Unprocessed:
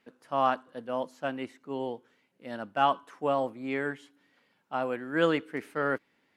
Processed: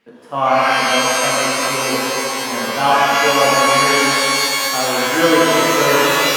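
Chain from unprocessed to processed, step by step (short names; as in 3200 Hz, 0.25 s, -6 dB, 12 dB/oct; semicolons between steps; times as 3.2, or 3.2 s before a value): shimmer reverb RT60 3.5 s, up +12 st, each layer -2 dB, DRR -7.5 dB; gain +5.5 dB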